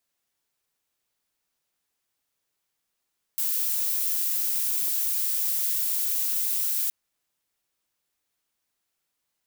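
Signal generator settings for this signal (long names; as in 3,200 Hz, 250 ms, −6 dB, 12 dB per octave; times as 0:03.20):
noise violet, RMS −26 dBFS 3.52 s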